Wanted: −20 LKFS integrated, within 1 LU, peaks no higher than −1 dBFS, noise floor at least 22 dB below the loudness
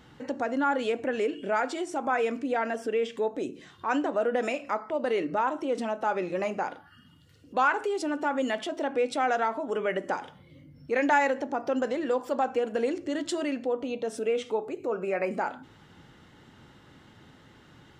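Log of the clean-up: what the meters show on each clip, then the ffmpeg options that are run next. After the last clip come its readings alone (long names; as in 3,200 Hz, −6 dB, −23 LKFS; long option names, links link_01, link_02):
integrated loudness −29.0 LKFS; sample peak −11.0 dBFS; target loudness −20.0 LKFS
→ -af "volume=9dB"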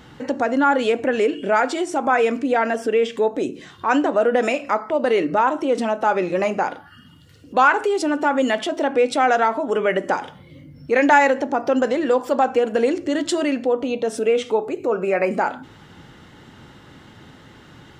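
integrated loudness −20.0 LKFS; sample peak −2.0 dBFS; background noise floor −47 dBFS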